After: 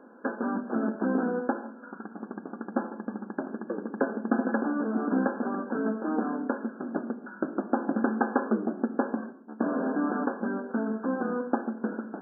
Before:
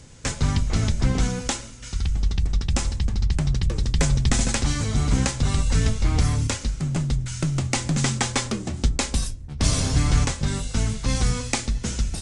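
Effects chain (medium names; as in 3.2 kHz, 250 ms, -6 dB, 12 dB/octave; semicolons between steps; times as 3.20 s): dynamic bell 1.1 kHz, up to -5 dB, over -45 dBFS, Q 1.6; brick-wall FIR band-pass 200–1700 Hz; reverberation, pre-delay 3 ms, DRR 10.5 dB; trim +3.5 dB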